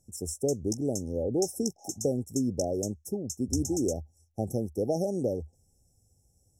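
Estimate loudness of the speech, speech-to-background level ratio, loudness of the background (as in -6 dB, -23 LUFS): -31.5 LUFS, 8.0 dB, -39.5 LUFS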